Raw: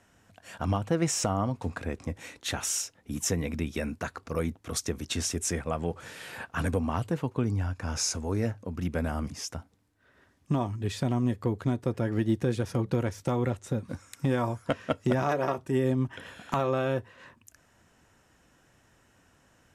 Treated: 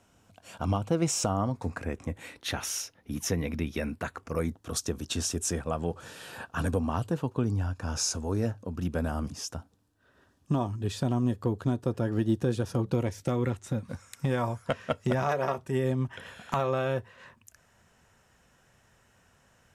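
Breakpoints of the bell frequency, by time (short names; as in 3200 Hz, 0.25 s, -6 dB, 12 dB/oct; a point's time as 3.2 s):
bell -11.5 dB 0.3 oct
1.17 s 1800 Hz
2.49 s 7700 Hz
3.86 s 7700 Hz
4.65 s 2100 Hz
12.86 s 2100 Hz
13.92 s 300 Hz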